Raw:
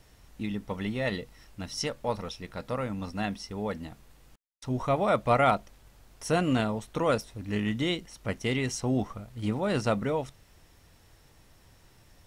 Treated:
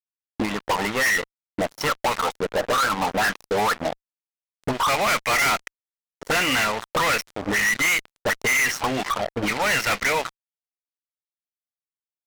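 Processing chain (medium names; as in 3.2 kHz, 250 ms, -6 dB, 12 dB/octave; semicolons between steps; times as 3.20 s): auto-wah 290–2100 Hz, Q 4.5, up, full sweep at -25 dBFS; fuzz box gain 57 dB, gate -60 dBFS; trim -5.5 dB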